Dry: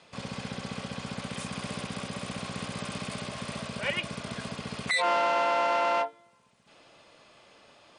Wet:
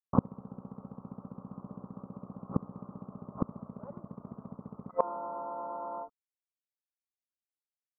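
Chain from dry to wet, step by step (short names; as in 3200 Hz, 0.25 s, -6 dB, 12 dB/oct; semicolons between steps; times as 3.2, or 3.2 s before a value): dynamic EQ 190 Hz, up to +6 dB, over -50 dBFS, Q 1.5; sample gate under -40.5 dBFS; rippled Chebyshev low-pass 1300 Hz, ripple 3 dB; flipped gate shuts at -25 dBFS, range -27 dB; gain +16.5 dB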